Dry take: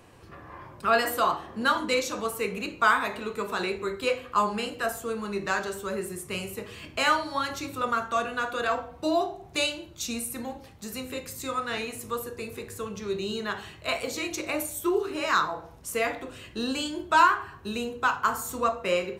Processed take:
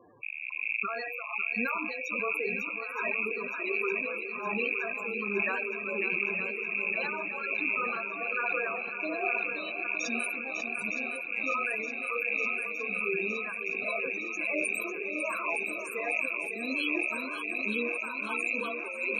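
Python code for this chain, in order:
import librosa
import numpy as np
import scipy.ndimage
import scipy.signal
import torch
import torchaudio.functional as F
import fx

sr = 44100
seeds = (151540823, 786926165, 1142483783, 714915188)

p1 = fx.rattle_buzz(x, sr, strikes_db=-49.0, level_db=-15.0)
p2 = fx.highpass(p1, sr, hz=270.0, slope=6)
p3 = fx.notch(p2, sr, hz=2900.0, q=15.0)
p4 = fx.over_compress(p3, sr, threshold_db=-28.0, ratio=-0.5)
p5 = p4 * (1.0 - 0.61 / 2.0 + 0.61 / 2.0 * np.cos(2.0 * np.pi * 1.3 * (np.arange(len(p4)) / sr)))
p6 = fx.spec_topn(p5, sr, count=16)
p7 = p6 + fx.echo_swing(p6, sr, ms=915, ratio=1.5, feedback_pct=71, wet_db=-10.5, dry=0)
y = fx.sustainer(p7, sr, db_per_s=23.0)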